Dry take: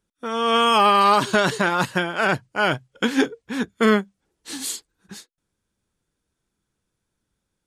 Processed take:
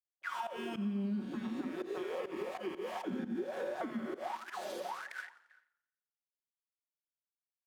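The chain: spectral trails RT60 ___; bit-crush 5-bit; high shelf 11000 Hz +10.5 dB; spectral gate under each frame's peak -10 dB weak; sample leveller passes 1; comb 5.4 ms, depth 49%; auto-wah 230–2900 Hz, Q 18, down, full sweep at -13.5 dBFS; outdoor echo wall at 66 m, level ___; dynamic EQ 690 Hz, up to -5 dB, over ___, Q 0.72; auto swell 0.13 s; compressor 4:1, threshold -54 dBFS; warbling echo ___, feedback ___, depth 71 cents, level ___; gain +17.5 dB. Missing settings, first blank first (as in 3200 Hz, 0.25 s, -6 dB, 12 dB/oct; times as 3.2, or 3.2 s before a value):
1.39 s, -30 dB, -55 dBFS, 87 ms, 49%, -17 dB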